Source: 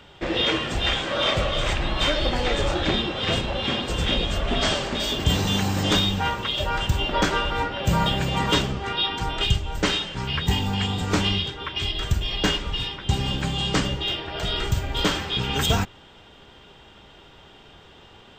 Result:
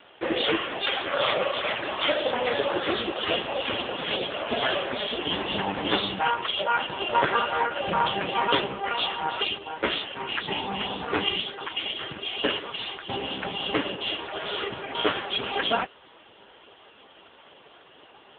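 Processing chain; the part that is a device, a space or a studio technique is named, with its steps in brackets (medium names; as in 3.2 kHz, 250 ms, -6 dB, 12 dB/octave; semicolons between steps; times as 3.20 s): telephone (band-pass 340–3500 Hz; trim +5 dB; AMR-NB 5.15 kbps 8 kHz)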